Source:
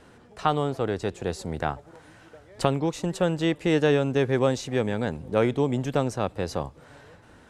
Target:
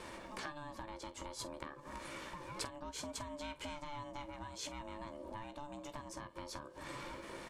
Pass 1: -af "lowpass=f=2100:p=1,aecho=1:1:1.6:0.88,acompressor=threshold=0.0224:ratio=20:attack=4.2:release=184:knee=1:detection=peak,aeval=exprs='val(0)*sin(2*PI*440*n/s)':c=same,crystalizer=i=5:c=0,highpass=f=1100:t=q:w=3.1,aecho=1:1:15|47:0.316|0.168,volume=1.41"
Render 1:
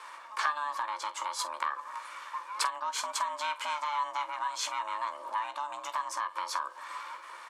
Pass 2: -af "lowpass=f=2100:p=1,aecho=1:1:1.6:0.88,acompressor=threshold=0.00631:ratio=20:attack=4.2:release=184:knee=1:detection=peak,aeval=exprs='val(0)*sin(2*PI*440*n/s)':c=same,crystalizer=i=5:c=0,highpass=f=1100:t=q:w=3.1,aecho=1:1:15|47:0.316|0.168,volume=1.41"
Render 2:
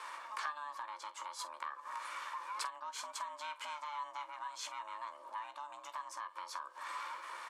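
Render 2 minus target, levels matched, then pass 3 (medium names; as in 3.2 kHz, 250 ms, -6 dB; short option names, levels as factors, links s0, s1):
1 kHz band +4.0 dB
-af "lowpass=f=2100:p=1,aecho=1:1:1.6:0.88,acompressor=threshold=0.00631:ratio=20:attack=4.2:release=184:knee=1:detection=peak,aeval=exprs='val(0)*sin(2*PI*440*n/s)':c=same,crystalizer=i=5:c=0,aecho=1:1:15|47:0.316|0.168,volume=1.41"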